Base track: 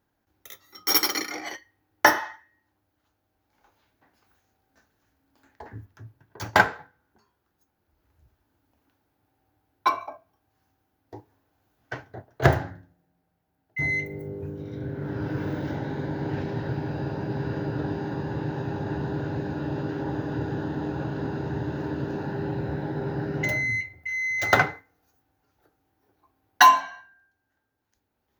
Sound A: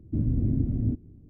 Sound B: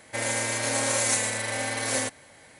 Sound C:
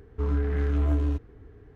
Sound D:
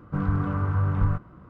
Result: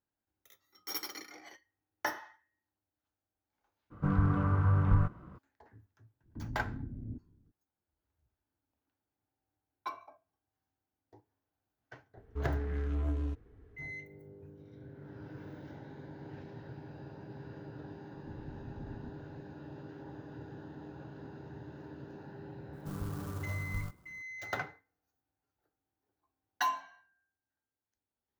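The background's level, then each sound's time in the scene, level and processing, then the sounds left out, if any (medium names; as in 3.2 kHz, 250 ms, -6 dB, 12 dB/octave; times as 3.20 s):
base track -17.5 dB
3.90 s: add D -3 dB, fades 0.02 s
6.23 s: add A -16 dB, fades 0.02 s
12.17 s: add C -9 dB
18.14 s: add A -16.5 dB + compressor with a negative ratio -30 dBFS
22.73 s: add D -15 dB + sampling jitter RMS 0.075 ms
not used: B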